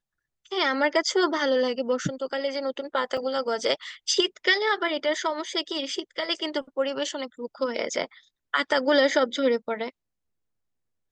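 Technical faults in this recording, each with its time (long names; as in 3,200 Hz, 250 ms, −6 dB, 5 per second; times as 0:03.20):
0:03.17: drop-out 4.3 ms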